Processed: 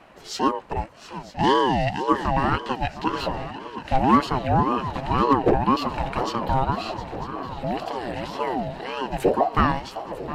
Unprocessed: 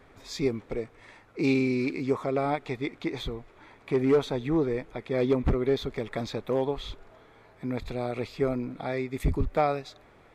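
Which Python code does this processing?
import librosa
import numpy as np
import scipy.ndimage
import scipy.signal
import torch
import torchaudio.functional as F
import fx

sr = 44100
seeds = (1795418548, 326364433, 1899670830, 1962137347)

y = fx.spec_erase(x, sr, start_s=6.77, length_s=2.24, low_hz=330.0, high_hz=900.0)
y = fx.echo_swing(y, sr, ms=949, ratio=3, feedback_pct=68, wet_db=-14)
y = fx.ring_lfo(y, sr, carrier_hz=560.0, swing_pct=30, hz=1.9)
y = y * librosa.db_to_amplitude(8.0)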